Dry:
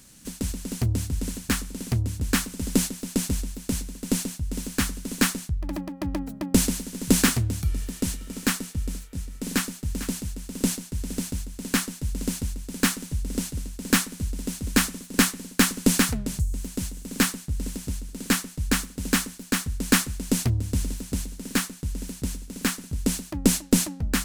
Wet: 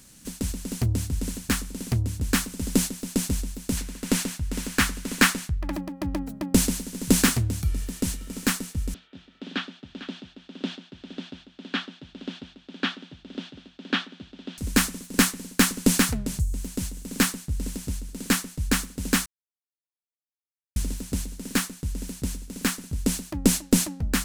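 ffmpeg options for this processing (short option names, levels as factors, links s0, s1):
-filter_complex "[0:a]asettb=1/sr,asplit=3[s0][s1][s2];[s0]atrim=end=3.774[s3];[s1]atrim=start=3.77:end=5.76,asetpts=PTS-STARTPTS,afade=t=in:d=0.004:c=qsin,afade=t=out:st=1.986:d=0.004:c=qsin,equalizer=f=1700:t=o:w=2.4:g=8[s4];[s2]atrim=start=5.756[s5];[s3][s4]acrossfade=d=0.004:c1=hsin:c2=qsin[s6];[s6][s5]acrossfade=d=0.004:c1=qsin:c2=hsin,asettb=1/sr,asplit=3[s7][s8][s9];[s7]atrim=end=8.944[s10];[s8]atrim=start=8.94:end=14.58,asetpts=PTS-STARTPTS,afade=t=in:d=0.004:c=qsin,afade=t=out:st=5.636:d=0.004:c=qsin,highpass=310,equalizer=f=470:t=q:w=4:g=-8,equalizer=f=1000:t=q:w=4:g=-6,equalizer=f=2100:t=q:w=4:g=-6,equalizer=f=3400:t=q:w=4:g=7,lowpass=f=3500:w=0.5412,lowpass=f=3500:w=1.3066[s11];[s9]atrim=start=14.576[s12];[s10][s11]acrossfade=d=0.004:c1=hsin:c2=qsin[s13];[s13][s12]acrossfade=d=0.004:c1=qsin:c2=hsin,asplit=3[s14][s15][s16];[s14]atrim=end=19.26,asetpts=PTS-STARTPTS,afade=t=out:st=19.256:d=0.004:c=hsin[s17];[s15]atrim=start=19.26:end=20.76,asetpts=PTS-STARTPTS,volume=0[s18];[s16]atrim=start=20.76,asetpts=PTS-STARTPTS,afade=t=in:d=0.004:c=hsin[s19];[s17][s18][s19]concat=n=3:v=0:a=1"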